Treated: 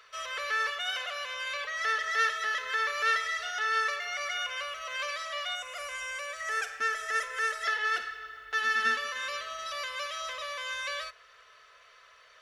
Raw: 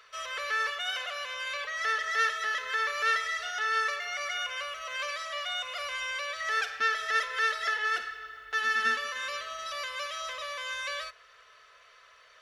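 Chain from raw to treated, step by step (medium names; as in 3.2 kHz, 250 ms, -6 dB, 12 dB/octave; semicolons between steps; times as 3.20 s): 5.55–7.64 s: ten-band graphic EQ 125 Hz -7 dB, 1 kHz -3 dB, 4 kHz -11 dB, 8 kHz +9 dB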